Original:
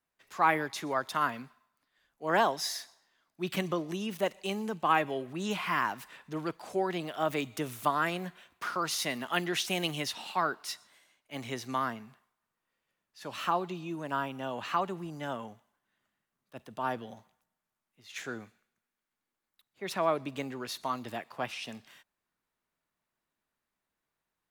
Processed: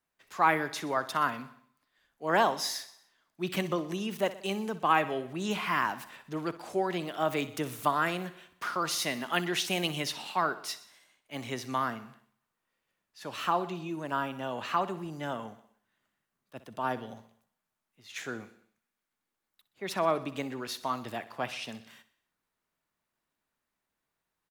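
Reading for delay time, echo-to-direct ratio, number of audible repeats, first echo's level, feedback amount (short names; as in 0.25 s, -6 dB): 62 ms, -14.5 dB, 4, -16.0 dB, 56%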